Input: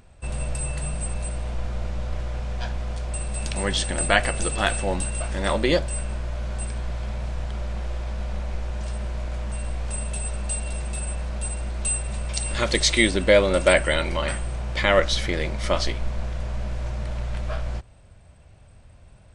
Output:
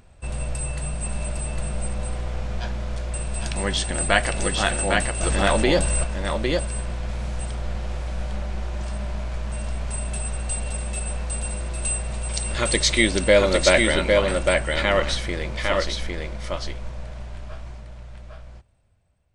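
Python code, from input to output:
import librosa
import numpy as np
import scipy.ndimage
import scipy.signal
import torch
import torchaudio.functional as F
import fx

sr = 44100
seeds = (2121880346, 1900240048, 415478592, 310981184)

y = fx.fade_out_tail(x, sr, length_s=5.42)
y = fx.high_shelf(y, sr, hz=8200.0, db=10.0, at=(7.09, 7.55))
y = y + 10.0 ** (-3.0 / 20.0) * np.pad(y, (int(805 * sr / 1000.0), 0))[:len(y)]
y = fx.env_flatten(y, sr, amount_pct=50, at=(5.23, 6.04))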